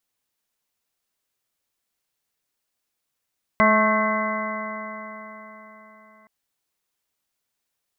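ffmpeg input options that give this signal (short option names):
-f lavfi -i "aevalsrc='0.1*pow(10,-3*t/4.15)*sin(2*PI*214.15*t)+0.0251*pow(10,-3*t/4.15)*sin(2*PI*429.2*t)+0.112*pow(10,-3*t/4.15)*sin(2*PI*646.03*t)+0.0335*pow(10,-3*t/4.15)*sin(2*PI*865.53*t)+0.141*pow(10,-3*t/4.15)*sin(2*PI*1088.56*t)+0.0335*pow(10,-3*t/4.15)*sin(2*PI*1315.96*t)+0.0473*pow(10,-3*t/4.15)*sin(2*PI*1548.53*t)+0.0141*pow(10,-3*t/4.15)*sin(2*PI*1787.05*t)+0.106*pow(10,-3*t/4.15)*sin(2*PI*2032.27*t)':d=2.67:s=44100"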